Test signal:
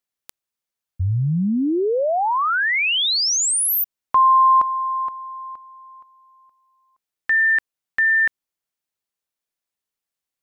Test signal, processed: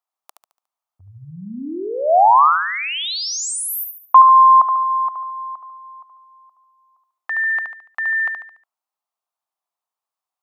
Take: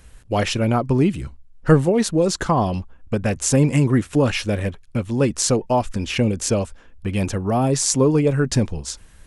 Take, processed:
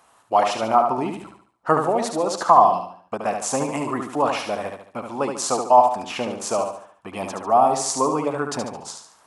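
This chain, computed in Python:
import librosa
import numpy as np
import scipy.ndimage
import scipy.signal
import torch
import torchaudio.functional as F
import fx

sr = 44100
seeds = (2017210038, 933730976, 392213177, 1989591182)

p1 = scipy.signal.sosfilt(scipy.signal.butter(2, 290.0, 'highpass', fs=sr, output='sos'), x)
p2 = fx.band_shelf(p1, sr, hz=910.0, db=14.0, octaves=1.2)
p3 = p2 + fx.echo_feedback(p2, sr, ms=72, feedback_pct=41, wet_db=-5.5, dry=0)
y = F.gain(torch.from_numpy(p3), -6.0).numpy()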